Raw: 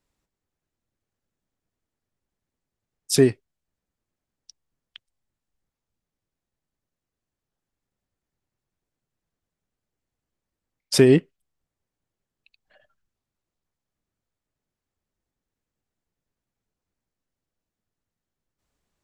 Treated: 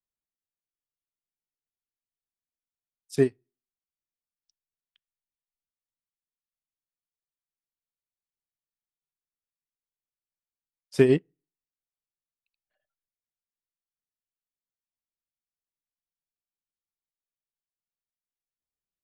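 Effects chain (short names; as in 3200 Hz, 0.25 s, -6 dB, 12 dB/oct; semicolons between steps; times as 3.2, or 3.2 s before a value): on a send at -18 dB: LPF 1800 Hz + reverb RT60 0.45 s, pre-delay 3 ms; on the sum: upward expander 2.5:1, over -25 dBFS; gain -2.5 dB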